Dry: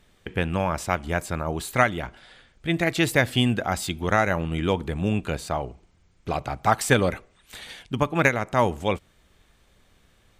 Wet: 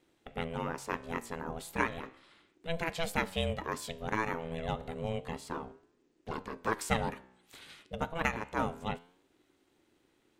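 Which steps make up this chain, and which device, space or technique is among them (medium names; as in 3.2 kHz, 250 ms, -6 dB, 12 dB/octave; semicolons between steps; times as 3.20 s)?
alien voice (ring modulator 330 Hz; flange 0.32 Hz, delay 9.6 ms, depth 9.2 ms, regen +88%); trim -4 dB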